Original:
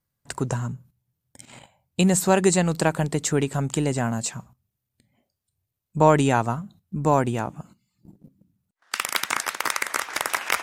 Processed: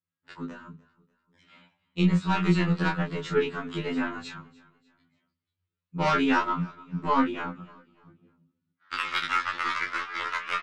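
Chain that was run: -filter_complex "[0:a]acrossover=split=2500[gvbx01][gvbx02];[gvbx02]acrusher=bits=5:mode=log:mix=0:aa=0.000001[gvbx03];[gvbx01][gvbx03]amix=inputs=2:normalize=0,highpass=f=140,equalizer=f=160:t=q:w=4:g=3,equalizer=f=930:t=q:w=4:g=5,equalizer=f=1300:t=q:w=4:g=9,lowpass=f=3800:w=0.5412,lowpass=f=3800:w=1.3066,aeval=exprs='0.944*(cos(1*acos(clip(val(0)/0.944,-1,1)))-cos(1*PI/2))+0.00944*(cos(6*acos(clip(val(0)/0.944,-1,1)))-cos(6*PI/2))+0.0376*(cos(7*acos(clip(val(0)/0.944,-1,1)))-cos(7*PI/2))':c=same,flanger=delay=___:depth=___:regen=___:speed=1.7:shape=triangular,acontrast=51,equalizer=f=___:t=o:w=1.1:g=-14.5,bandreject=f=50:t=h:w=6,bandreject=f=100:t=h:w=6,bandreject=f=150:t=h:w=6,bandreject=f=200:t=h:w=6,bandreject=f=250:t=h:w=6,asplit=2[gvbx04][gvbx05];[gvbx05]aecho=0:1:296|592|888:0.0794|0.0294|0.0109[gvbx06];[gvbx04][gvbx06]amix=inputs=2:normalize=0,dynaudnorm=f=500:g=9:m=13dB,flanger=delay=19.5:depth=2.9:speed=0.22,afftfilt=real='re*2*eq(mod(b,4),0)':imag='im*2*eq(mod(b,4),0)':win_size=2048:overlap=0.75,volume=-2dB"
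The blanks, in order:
8.6, 6.4, -31, 750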